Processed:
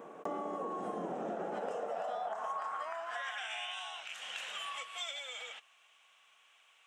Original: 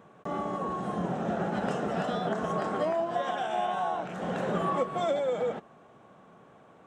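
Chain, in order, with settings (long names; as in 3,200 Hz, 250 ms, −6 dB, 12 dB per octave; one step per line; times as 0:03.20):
parametric band 460 Hz +6 dB 0.21 octaves
high-pass filter sweep 350 Hz → 2,900 Hz, 0:01.40–0:03.81
graphic EQ with 15 bands 400 Hz −9 dB, 1,600 Hz −4 dB, 4,000 Hz −7 dB
downward compressor 6 to 1, threshold −42 dBFS, peak gain reduction 15.5 dB
level +5.5 dB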